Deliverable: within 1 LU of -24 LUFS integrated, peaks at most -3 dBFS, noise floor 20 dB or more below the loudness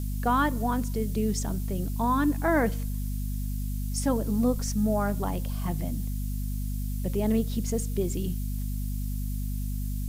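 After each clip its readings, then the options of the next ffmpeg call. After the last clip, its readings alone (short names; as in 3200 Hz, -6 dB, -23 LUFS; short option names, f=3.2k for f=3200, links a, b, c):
hum 50 Hz; harmonics up to 250 Hz; hum level -28 dBFS; noise floor -31 dBFS; noise floor target -49 dBFS; loudness -29.0 LUFS; peak -13.0 dBFS; loudness target -24.0 LUFS
-> -af "bandreject=f=50:t=h:w=4,bandreject=f=100:t=h:w=4,bandreject=f=150:t=h:w=4,bandreject=f=200:t=h:w=4,bandreject=f=250:t=h:w=4"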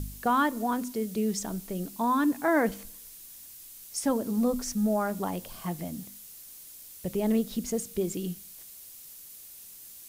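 hum none; noise floor -48 dBFS; noise floor target -50 dBFS
-> -af "afftdn=nr=6:nf=-48"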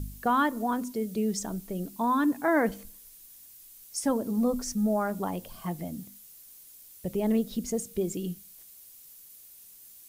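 noise floor -52 dBFS; loudness -29.5 LUFS; peak -15.0 dBFS; loudness target -24.0 LUFS
-> -af "volume=5.5dB"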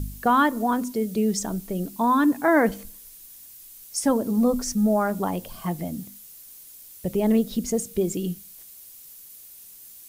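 loudness -24.0 LUFS; peak -9.5 dBFS; noise floor -46 dBFS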